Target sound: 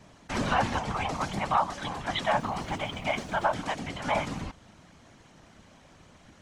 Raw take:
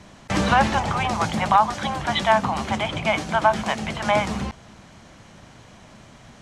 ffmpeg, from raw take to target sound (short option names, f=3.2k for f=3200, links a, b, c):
-filter_complex "[0:a]asettb=1/sr,asplit=3[a][b][c];[a]atrim=end=2.384[d];[b]atrim=start=2.38:end=3.5,asetpts=PTS-STARTPTS,afade=t=in:d=0.004:c=qsin,afade=t=out:st=1.116:d=0.004:c=qsin,acrusher=bits=8:mix=0:aa=0.5[e];[c]atrim=start=3.496[f];[d][e]acrossfade=d=0.004:c1=hsin:c2=qsin[g];[g][f]acrossfade=d=0.004:c1=qsin:c2=hsin,afftfilt=real='hypot(re,im)*cos(2*PI*random(0))':imag='hypot(re,im)*sin(2*PI*random(1))':win_size=512:overlap=0.75,volume=-2dB"